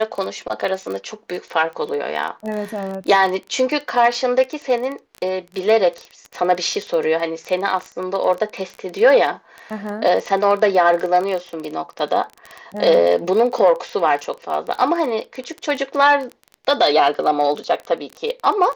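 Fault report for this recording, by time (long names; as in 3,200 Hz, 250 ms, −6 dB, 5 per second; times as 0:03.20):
surface crackle 20 per second −24 dBFS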